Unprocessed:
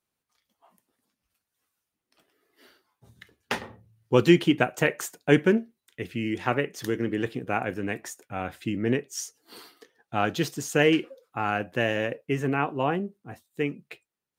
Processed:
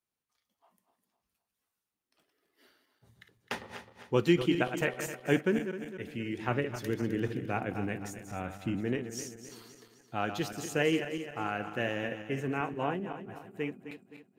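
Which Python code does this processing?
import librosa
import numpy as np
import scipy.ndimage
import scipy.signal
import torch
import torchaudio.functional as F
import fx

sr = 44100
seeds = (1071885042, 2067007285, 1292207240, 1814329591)

y = fx.reverse_delay_fb(x, sr, ms=130, feedback_pct=66, wet_db=-9)
y = fx.low_shelf(y, sr, hz=240.0, db=7.0, at=(6.48, 8.81))
y = y * 10.0 ** (-7.5 / 20.0)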